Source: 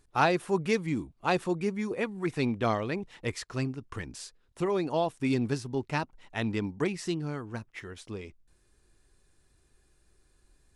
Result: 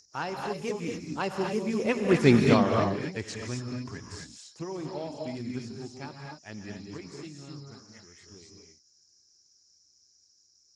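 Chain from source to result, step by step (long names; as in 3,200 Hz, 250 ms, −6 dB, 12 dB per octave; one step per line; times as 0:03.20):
source passing by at 0:02.23, 21 m/s, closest 3.8 metres
high-shelf EQ 7,800 Hz +7.5 dB
in parallel at +2 dB: downward compressor 5 to 1, threshold −51 dBFS, peak gain reduction 23.5 dB
on the sum: harmonic generator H 2 −41 dB, 4 −39 dB, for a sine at −15.5 dBFS
steady tone 5,300 Hz −56 dBFS
convolution reverb, pre-delay 38 ms, DRR 1 dB
level +8 dB
Speex 15 kbit/s 32,000 Hz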